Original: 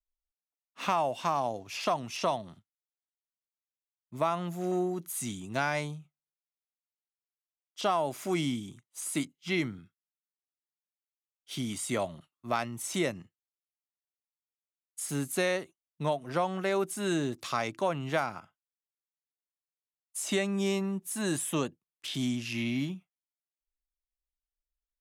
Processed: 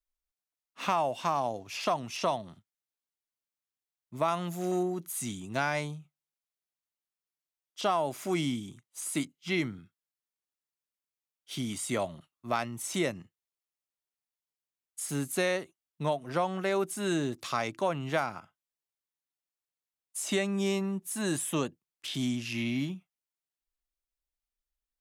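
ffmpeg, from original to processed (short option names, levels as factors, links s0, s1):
-filter_complex "[0:a]asettb=1/sr,asplit=3[s0][s1][s2];[s0]atrim=end=4.284[s3];[s1]atrim=start=4.28:end=4.83,asetpts=PTS-STARTPTS,afade=t=in:d=0.004:c=qsin,afade=t=out:st=0.546:d=0.004:c=qsin,highshelf=f=2800:g=6.5[s4];[s2]atrim=start=4.826[s5];[s3][s4]acrossfade=d=0.004:c1=hsin:c2=qsin[s6];[s6][s5]acrossfade=d=0.004:c1=qsin:c2=hsin"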